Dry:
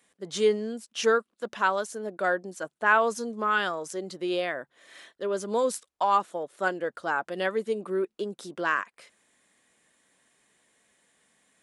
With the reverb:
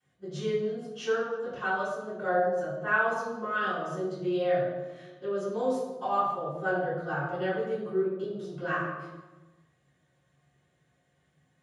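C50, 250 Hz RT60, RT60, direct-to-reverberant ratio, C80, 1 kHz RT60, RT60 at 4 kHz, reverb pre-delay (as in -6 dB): 0.0 dB, 1.7 s, 1.2 s, -24.5 dB, 2.5 dB, 1.1 s, 0.85 s, 3 ms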